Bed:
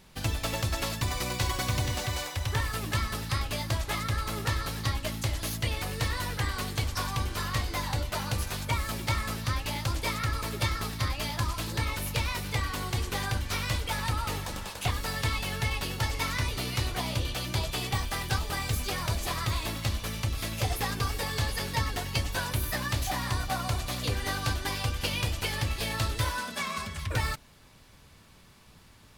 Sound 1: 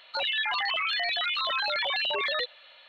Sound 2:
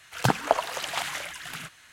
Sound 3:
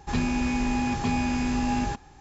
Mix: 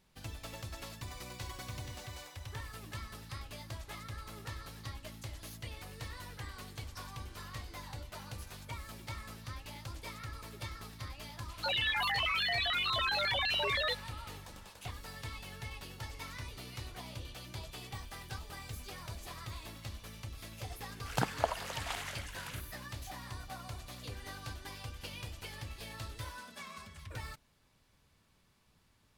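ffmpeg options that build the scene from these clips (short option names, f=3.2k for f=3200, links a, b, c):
-filter_complex "[0:a]volume=-14.5dB[a];[1:a]atrim=end=2.88,asetpts=PTS-STARTPTS,volume=-4dB,afade=t=in:d=0.004:c=hsin,afade=t=out:st=2.876:d=0.004:c=hsin,adelay=11490[b];[2:a]atrim=end=1.92,asetpts=PTS-STARTPTS,volume=-9.5dB,afade=t=in:d=0.004:c=hsin,afade=t=out:st=1.916:d=0.004:c=hsin,adelay=20930[c];[a][b][c]amix=inputs=3:normalize=0"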